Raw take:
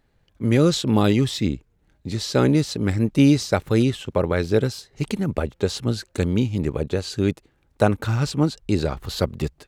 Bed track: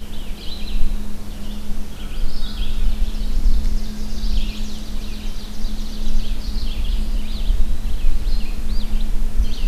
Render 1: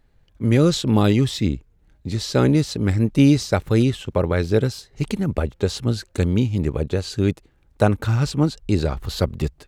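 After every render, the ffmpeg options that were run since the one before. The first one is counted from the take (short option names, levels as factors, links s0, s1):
-af "lowshelf=f=73:g=10"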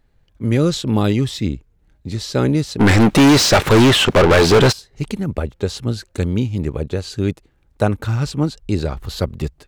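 -filter_complex "[0:a]asplit=3[s0][s1][s2];[s0]afade=t=out:st=2.79:d=0.02[s3];[s1]asplit=2[s4][s5];[s5]highpass=f=720:p=1,volume=70.8,asoftclip=type=tanh:threshold=0.668[s6];[s4][s6]amix=inputs=2:normalize=0,lowpass=f=3500:p=1,volume=0.501,afade=t=in:st=2.79:d=0.02,afade=t=out:st=4.71:d=0.02[s7];[s2]afade=t=in:st=4.71:d=0.02[s8];[s3][s7][s8]amix=inputs=3:normalize=0"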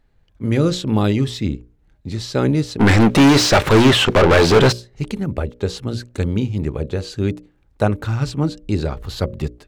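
-af "highshelf=f=6500:g=-5.5,bandreject=f=60:t=h:w=6,bandreject=f=120:t=h:w=6,bandreject=f=180:t=h:w=6,bandreject=f=240:t=h:w=6,bandreject=f=300:t=h:w=6,bandreject=f=360:t=h:w=6,bandreject=f=420:t=h:w=6,bandreject=f=480:t=h:w=6,bandreject=f=540:t=h:w=6,bandreject=f=600:t=h:w=6"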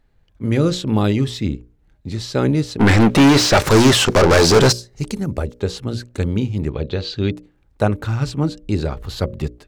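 -filter_complex "[0:a]asettb=1/sr,asplit=3[s0][s1][s2];[s0]atrim=end=3.574[s3];[s1]atrim=start=3.57:end=5.6,asetpts=PTS-STARTPTS,afade=t=in:d=0.004:c=qsin,afade=t=out:st=2.026:d=0.004:c=qsin,highshelf=f=4200:t=q:w=1.5:g=6.5[s4];[s2]atrim=start=5.596[s5];[s3][s4]acrossfade=d=0.004:c1=hsin:c2=qsin[s6];[s6][s5]acrossfade=d=0.004:c1=qsin:c2=hsin,asplit=3[s7][s8][s9];[s7]afade=t=out:st=6.71:d=0.02[s10];[s8]lowpass=f=4000:t=q:w=2.7,afade=t=in:st=6.71:d=0.02,afade=t=out:st=7.3:d=0.02[s11];[s9]afade=t=in:st=7.3:d=0.02[s12];[s10][s11][s12]amix=inputs=3:normalize=0"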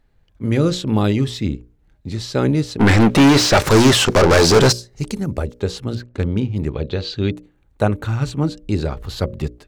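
-filter_complex "[0:a]asettb=1/sr,asplit=3[s0][s1][s2];[s0]atrim=end=5.954[s3];[s1]atrim=start=5.95:end=6.56,asetpts=PTS-STARTPTS,afade=t=in:d=0.004:c=qsin,afade=t=out:st=0.606:d=0.004:c=qsin,adynamicsmooth=sensitivity=3:basefreq=3000[s4];[s2]atrim=start=6.556[s5];[s3][s4]acrossfade=d=0.004:c1=hsin:c2=qsin[s6];[s6][s5]acrossfade=d=0.004:c1=qsin:c2=hsin,asettb=1/sr,asplit=3[s7][s8][s9];[s7]atrim=end=7.164[s10];[s8]atrim=start=7.16:end=8.34,asetpts=PTS-STARTPTS,afade=t=in:d=0.004:c=qsin,afade=t=out:st=1.176:d=0.004:c=qsin,bandreject=f=5100:w=6.3[s11];[s9]atrim=start=8.336[s12];[s10][s11]acrossfade=d=0.004:c1=hsin:c2=qsin[s13];[s13][s12]acrossfade=d=0.004:c1=qsin:c2=hsin"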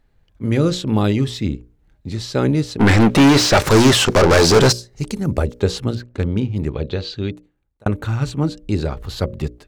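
-filter_complex "[0:a]asplit=4[s0][s1][s2][s3];[s0]atrim=end=5.252[s4];[s1]atrim=start=5.248:end=5.912,asetpts=PTS-STARTPTS,volume=1.58[s5];[s2]atrim=start=5.908:end=7.86,asetpts=PTS-STARTPTS,afade=t=out:st=0.992:d=0.96[s6];[s3]atrim=start=7.86,asetpts=PTS-STARTPTS,afade=t=in:d=0.004:c=hsin[s7];[s4][s5]acrossfade=d=0.004:c1=hsin:c2=hsin[s8];[s6][s7]concat=n=2:v=0:a=1[s9];[s8][s9]acrossfade=d=0.004:c1=hsin:c2=hsin"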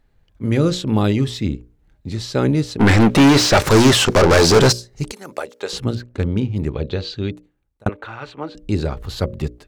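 -filter_complex "[0:a]asettb=1/sr,asplit=3[s0][s1][s2];[s0]atrim=end=5.124[s3];[s1]atrim=start=5.12:end=5.73,asetpts=PTS-STARTPTS,afade=t=in:d=0.004:c=qsin,afade=t=out:st=0.606:d=0.004:c=qsin,highpass=650[s4];[s2]atrim=start=5.726[s5];[s3][s4]acrossfade=d=0.004:c1=hsin:c2=qsin[s6];[s6][s5]acrossfade=d=0.004:c1=qsin:c2=hsin,asettb=1/sr,asplit=3[s7][s8][s9];[s7]atrim=end=7.894[s10];[s8]atrim=start=7.89:end=8.55,asetpts=PTS-STARTPTS,afade=t=in:d=0.004:c=qsin,afade=t=out:st=0.656:d=0.004:c=qsin,acrossover=split=410 3700:gain=0.0891 1 0.0708[s11][s12][s13];[s11][s12][s13]amix=inputs=3:normalize=0[s14];[s9]atrim=start=8.546[s15];[s10][s14]acrossfade=d=0.004:c1=hsin:c2=qsin[s16];[s16][s15]acrossfade=d=0.004:c1=qsin:c2=hsin"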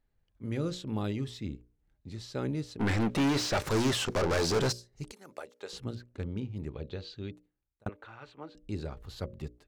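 -af "volume=0.158"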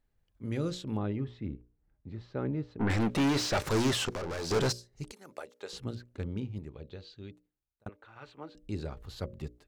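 -filter_complex "[0:a]asettb=1/sr,asplit=3[s0][s1][s2];[s0]atrim=end=0.974[s3];[s1]atrim=start=0.97:end=2.9,asetpts=PTS-STARTPTS,afade=t=in:d=0.004:c=qsin,afade=t=out:st=1.926:d=0.004:c=qsin,lowpass=1800[s4];[s2]atrim=start=2.896[s5];[s3][s4]acrossfade=d=0.004:c1=hsin:c2=qsin[s6];[s6][s5]acrossfade=d=0.004:c1=qsin:c2=hsin,asettb=1/sr,asplit=3[s7][s8][s9];[s7]atrim=end=4.094[s10];[s8]atrim=start=4.09:end=4.51,asetpts=PTS-STARTPTS,afade=t=in:d=0.004:c=qsin,afade=t=out:st=0.416:d=0.004:c=qsin,acompressor=threshold=0.02:ratio=6:attack=3.2:release=140:knee=1:detection=peak[s11];[s9]atrim=start=4.506[s12];[s10][s11]acrossfade=d=0.004:c1=hsin:c2=qsin[s13];[s13][s12]acrossfade=d=0.004:c1=qsin:c2=hsin,asplit=3[s14][s15][s16];[s14]atrim=end=6.592[s17];[s15]atrim=start=6.588:end=8.162,asetpts=PTS-STARTPTS,volume=0.501[s18];[s16]atrim=start=8.158[s19];[s17][s18]acrossfade=d=0.004:c1=hsin:c2=hsin[s20];[s20][s19]acrossfade=d=0.004:c1=hsin:c2=hsin"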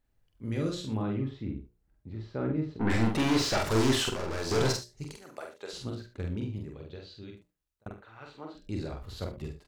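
-filter_complex "[0:a]asplit=2[s0][s1];[s1]adelay=45,volume=0.708[s2];[s0][s2]amix=inputs=2:normalize=0,aecho=1:1:48|73:0.251|0.224"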